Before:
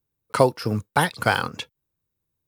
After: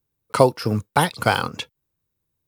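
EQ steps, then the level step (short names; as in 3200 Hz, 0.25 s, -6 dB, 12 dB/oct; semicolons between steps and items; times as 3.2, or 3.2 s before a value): dynamic EQ 1700 Hz, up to -6 dB, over -39 dBFS, Q 3.9; +2.5 dB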